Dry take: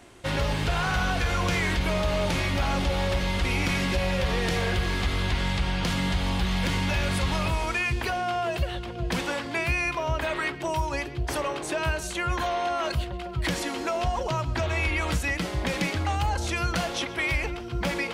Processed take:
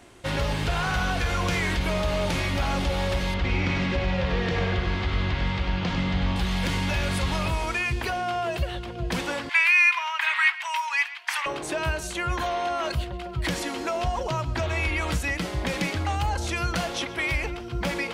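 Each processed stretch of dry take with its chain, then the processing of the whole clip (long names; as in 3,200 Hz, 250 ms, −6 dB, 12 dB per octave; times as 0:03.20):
0:03.34–0:06.36: high-frequency loss of the air 160 metres + single-tap delay 98 ms −5.5 dB
0:09.49–0:11.46: Chebyshev high-pass filter 910 Hz, order 4 + parametric band 2,200 Hz +11 dB 1.3 octaves
whole clip: no processing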